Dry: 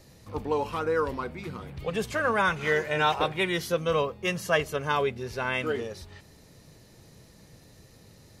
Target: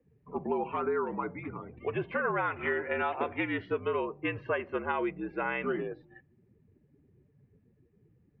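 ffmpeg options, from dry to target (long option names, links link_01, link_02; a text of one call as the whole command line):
ffmpeg -i in.wav -af "afftdn=noise_reduction=24:noise_floor=-46,acompressor=threshold=-26dB:ratio=10,highpass=frequency=200:width_type=q:width=0.5412,highpass=frequency=200:width_type=q:width=1.307,lowpass=frequency=2700:width_type=q:width=0.5176,lowpass=frequency=2700:width_type=q:width=0.7071,lowpass=frequency=2700:width_type=q:width=1.932,afreqshift=-61" out.wav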